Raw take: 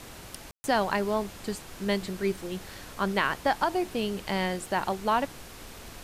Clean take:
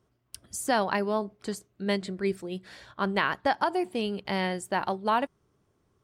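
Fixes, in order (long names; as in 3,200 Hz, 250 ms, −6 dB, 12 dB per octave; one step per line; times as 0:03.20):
ambience match 0:00.51–0:00.64
noise reduction from a noise print 25 dB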